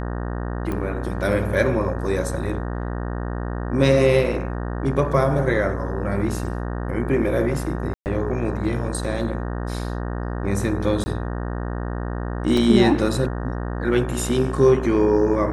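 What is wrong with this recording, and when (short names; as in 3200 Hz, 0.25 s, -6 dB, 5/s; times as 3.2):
buzz 60 Hz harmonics 31 -27 dBFS
0.72 pop -16 dBFS
6.44 gap 2.5 ms
7.94–8.06 gap 0.119 s
11.04–11.06 gap 20 ms
12.57 gap 3.4 ms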